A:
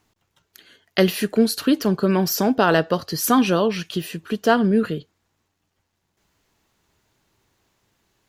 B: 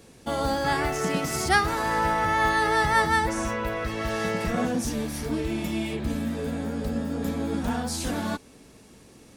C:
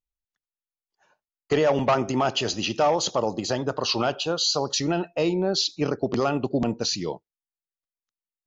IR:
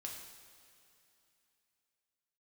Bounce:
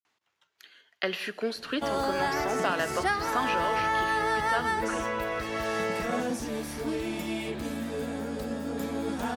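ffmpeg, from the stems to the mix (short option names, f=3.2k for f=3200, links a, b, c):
-filter_complex "[0:a]tremolo=f=3.5:d=0.35,bandpass=f=2k:t=q:w=0.58:csg=0,adelay=50,volume=-1.5dB,asplit=2[a][b];[b]volume=-12dB[c];[1:a]adelay=1550,volume=-1.5dB,asplit=2[d][e];[e]volume=-15.5dB[f];[3:a]atrim=start_sample=2205[g];[c][f]amix=inputs=2:normalize=0[h];[h][g]afir=irnorm=-1:irlink=0[i];[a][d][i]amix=inputs=3:normalize=0,acrossover=split=260|2900[j][k][l];[j]acompressor=threshold=-42dB:ratio=4[m];[k]acompressor=threshold=-24dB:ratio=4[n];[l]acompressor=threshold=-42dB:ratio=4[o];[m][n][o]amix=inputs=3:normalize=0"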